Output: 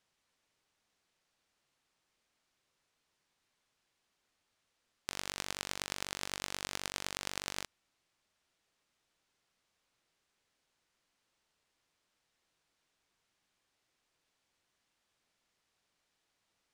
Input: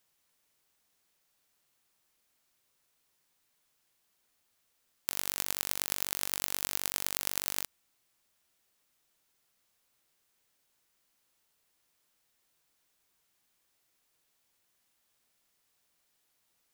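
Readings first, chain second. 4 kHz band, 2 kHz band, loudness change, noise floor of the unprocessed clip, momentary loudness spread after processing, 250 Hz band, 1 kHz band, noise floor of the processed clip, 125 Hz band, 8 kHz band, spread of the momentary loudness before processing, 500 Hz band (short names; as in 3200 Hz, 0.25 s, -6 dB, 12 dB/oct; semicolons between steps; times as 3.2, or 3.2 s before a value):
-2.0 dB, -0.5 dB, -7.0 dB, -76 dBFS, 4 LU, 0.0 dB, -0.5 dB, -82 dBFS, 0.0 dB, -7.5 dB, 4 LU, 0.0 dB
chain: air absorption 71 m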